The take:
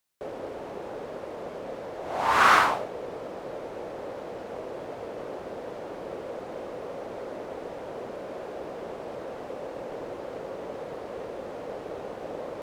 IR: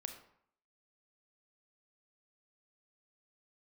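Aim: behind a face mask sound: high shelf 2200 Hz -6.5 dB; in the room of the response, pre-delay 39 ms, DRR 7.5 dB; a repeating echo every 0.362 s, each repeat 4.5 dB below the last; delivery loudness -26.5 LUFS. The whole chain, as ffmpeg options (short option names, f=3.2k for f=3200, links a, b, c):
-filter_complex "[0:a]aecho=1:1:362|724|1086|1448|1810|2172|2534|2896|3258:0.596|0.357|0.214|0.129|0.0772|0.0463|0.0278|0.0167|0.01,asplit=2[a][b];[1:a]atrim=start_sample=2205,adelay=39[c];[b][c]afir=irnorm=-1:irlink=0,volume=-5dB[d];[a][d]amix=inputs=2:normalize=0,highshelf=f=2.2k:g=-6.5,volume=4dB"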